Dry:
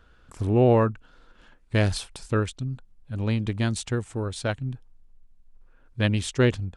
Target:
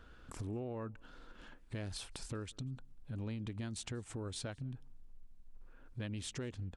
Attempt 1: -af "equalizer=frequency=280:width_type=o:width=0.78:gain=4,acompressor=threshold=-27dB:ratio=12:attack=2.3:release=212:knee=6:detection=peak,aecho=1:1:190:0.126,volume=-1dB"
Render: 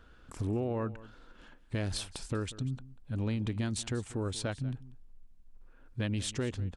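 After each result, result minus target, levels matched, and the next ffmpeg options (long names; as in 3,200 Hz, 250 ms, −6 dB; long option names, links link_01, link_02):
downward compressor: peak gain reduction −8.5 dB; echo-to-direct +11.5 dB
-af "equalizer=frequency=280:width_type=o:width=0.78:gain=4,acompressor=threshold=-36.5dB:ratio=12:attack=2.3:release=212:knee=6:detection=peak,aecho=1:1:190:0.126,volume=-1dB"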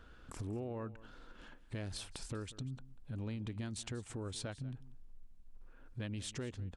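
echo-to-direct +11.5 dB
-af "equalizer=frequency=280:width_type=o:width=0.78:gain=4,acompressor=threshold=-36.5dB:ratio=12:attack=2.3:release=212:knee=6:detection=peak,aecho=1:1:190:0.0335,volume=-1dB"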